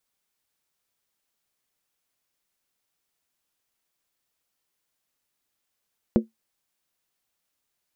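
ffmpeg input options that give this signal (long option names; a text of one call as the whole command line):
ffmpeg -f lavfi -i "aevalsrc='0.266*pow(10,-3*t/0.15)*sin(2*PI*223*t)+0.15*pow(10,-3*t/0.119)*sin(2*PI*355.5*t)+0.0841*pow(10,-3*t/0.103)*sin(2*PI*476.3*t)+0.0473*pow(10,-3*t/0.099)*sin(2*PI*512*t)+0.0266*pow(10,-3*t/0.092)*sin(2*PI*591.6*t)':duration=0.63:sample_rate=44100" out.wav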